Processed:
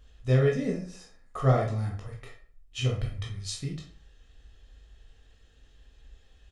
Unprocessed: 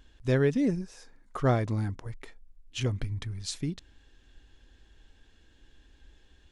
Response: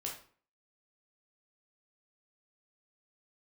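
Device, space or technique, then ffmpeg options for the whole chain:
microphone above a desk: -filter_complex "[0:a]aecho=1:1:1.6:0.51[s0];[1:a]atrim=start_sample=2205[s1];[s0][s1]afir=irnorm=-1:irlink=0"

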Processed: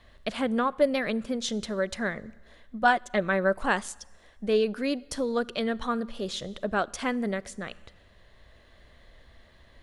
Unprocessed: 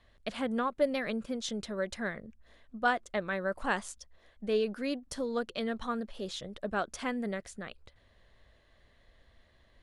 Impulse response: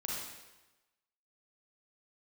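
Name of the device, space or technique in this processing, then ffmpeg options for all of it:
ducked reverb: -filter_complex "[0:a]asplit=3[s0][s1][s2];[1:a]atrim=start_sample=2205[s3];[s1][s3]afir=irnorm=-1:irlink=0[s4];[s2]apad=whole_len=433471[s5];[s4][s5]sidechaincompress=threshold=0.002:ratio=3:attack=9.6:release=793,volume=0.562[s6];[s0][s6]amix=inputs=2:normalize=0,asettb=1/sr,asplit=3[s7][s8][s9];[s7]atrim=end=2.814[s10];[s8]atrim=start=2.81:end=3.55,asetpts=PTS-STARTPTS,afade=t=in:d=0.004:c=qsin,afade=t=out:st=0.736:d=0.004:c=qsin,aecho=1:1:5.3:0.51,atrim=end_sample=32634[s11];[s9]atrim=start=3.546[s12];[s10][s11]acrossfade=d=0.004:c1=hsin:c2=qsin[s13];[s13][s12]acrossfade=d=0.004:c1=qsin:c2=hsin,volume=1.78"

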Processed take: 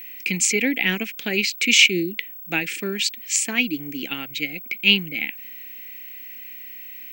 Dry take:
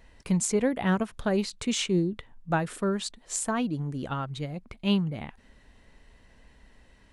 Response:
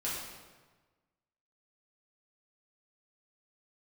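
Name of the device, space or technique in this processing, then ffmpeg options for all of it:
old television with a line whistle: -af "highpass=f=200:w=0.5412,highpass=f=200:w=1.3066,equalizer=f=300:t=q:w=4:g=7,equalizer=f=600:t=q:w=4:g=-8,equalizer=f=1000:t=q:w=4:g=-5,equalizer=f=2300:t=q:w=4:g=6,equalizer=f=3700:t=q:w=4:g=-5,lowpass=f=7500:w=0.5412,lowpass=f=7500:w=1.3066,aeval=exprs='val(0)+0.00398*sin(2*PI*15734*n/s)':c=same,highshelf=f=1700:t=q:w=3:g=11.5,volume=1.12"

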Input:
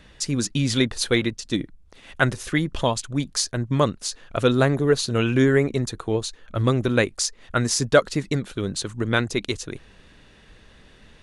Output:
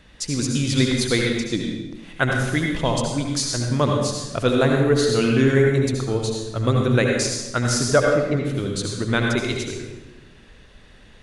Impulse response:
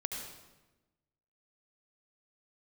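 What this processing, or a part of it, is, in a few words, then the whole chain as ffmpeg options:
bathroom: -filter_complex "[0:a]asettb=1/sr,asplit=3[s0][s1][s2];[s0]atrim=end=7.914[s3];[s1]atrim=start=7.91:end=8.37,asetpts=PTS-STARTPTS,afade=t=in:d=0.004:c=qsin,afade=t=out:st=0.456:d=0.004:c=qsin,lowpass=2300[s4];[s2]atrim=start=8.366[s5];[s3][s4]acrossfade=d=0.004:c1=hsin:c2=qsin[s6];[s6][s5]acrossfade=d=0.004:c1=qsin:c2=hsin[s7];[1:a]atrim=start_sample=2205[s8];[s7][s8]afir=irnorm=-1:irlink=0"

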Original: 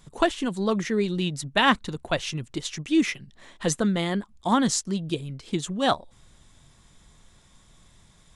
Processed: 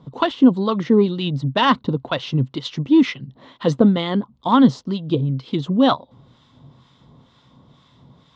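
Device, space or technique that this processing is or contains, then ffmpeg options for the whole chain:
guitar amplifier with harmonic tremolo: -filter_complex "[0:a]acrossover=split=1000[s0][s1];[s0]aeval=exprs='val(0)*(1-0.7/2+0.7/2*cos(2*PI*2.1*n/s))':c=same[s2];[s1]aeval=exprs='val(0)*(1-0.7/2-0.7/2*cos(2*PI*2.1*n/s))':c=same[s3];[s2][s3]amix=inputs=2:normalize=0,asoftclip=type=tanh:threshold=0.178,highpass=100,equalizer=f=130:t=q:w=4:g=10,equalizer=f=260:t=q:w=4:g=10,equalizer=f=500:t=q:w=4:g=5,equalizer=f=1000:t=q:w=4:g=5,equalizer=f=1700:t=q:w=4:g=-8,equalizer=f=2400:t=q:w=4:g=-8,lowpass=f=4100:w=0.5412,lowpass=f=4100:w=1.3066,volume=2.66"

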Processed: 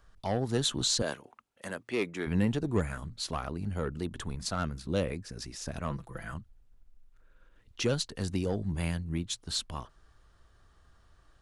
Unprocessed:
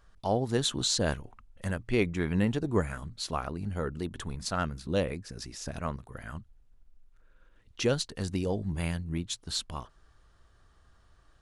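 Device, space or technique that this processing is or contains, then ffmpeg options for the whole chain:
one-band saturation: -filter_complex "[0:a]acrossover=split=260|3100[s0][s1][s2];[s1]asoftclip=type=tanh:threshold=0.0562[s3];[s0][s3][s2]amix=inputs=3:normalize=0,asettb=1/sr,asplit=3[s4][s5][s6];[s4]atrim=end=1.024[s7];[s5]atrim=start=1.02:end=2.27,asetpts=PTS-STARTPTS,afade=t=in:d=0.004:c=qsin,afade=t=out:st=1.246:d=0.004:c=qsin,highpass=300[s8];[s6]atrim=start=2.266[s9];[s7][s8]acrossfade=d=0.004:c1=hsin:c2=qsin[s10];[s10][s9]acrossfade=d=0.004:c1=qsin:c2=hsin,asettb=1/sr,asplit=3[s11][s12][s13];[s11]atrim=end=5.904[s14];[s12]atrim=start=5.9:end=6.34,asetpts=PTS-STARTPTS,afade=t=in:d=0.004:c=qsin,afade=t=out:st=0.436:d=0.004:c=qsin,aecho=1:1:6:0.81,atrim=end_sample=19404[s15];[s13]atrim=start=6.336[s16];[s14][s15]acrossfade=d=0.004:c1=hsin:c2=qsin[s17];[s17][s16]acrossfade=d=0.004:c1=qsin:c2=hsin"

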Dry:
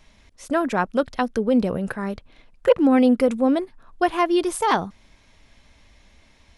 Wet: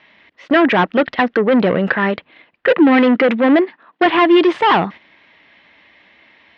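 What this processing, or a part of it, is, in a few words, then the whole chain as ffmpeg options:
overdrive pedal into a guitar cabinet: -filter_complex "[0:a]asplit=2[s0][s1];[s1]highpass=f=720:p=1,volume=20,asoftclip=type=tanh:threshold=0.668[s2];[s0][s2]amix=inputs=2:normalize=0,lowpass=f=2900:p=1,volume=0.501,highpass=93,equalizer=f=170:t=q:w=4:g=4,equalizer=f=320:t=q:w=4:g=6,equalizer=f=1900:t=q:w=4:g=8,equalizer=f=2900:t=q:w=4:g=4,lowpass=f=3900:w=0.5412,lowpass=f=3900:w=1.3066,agate=range=0.355:threshold=0.0398:ratio=16:detection=peak,asettb=1/sr,asplit=3[s3][s4][s5];[s3]atrim=end=2.724[s6];[s4]atrim=start=2.72:end=4.06,asetpts=PTS-STARTPTS,afade=t=in:d=0.004:c=qsin,afade=t=out:st=1.336:d=0.004:c=qsin,highpass=f=170:w=0.5412,highpass=f=170:w=1.3066[s7];[s5]atrim=start=4.056[s8];[s6][s7]acrossfade=d=0.004:c1=hsin:c2=qsin[s9];[s9][s8]acrossfade=d=0.004:c1=qsin:c2=hsin,volume=0.794"

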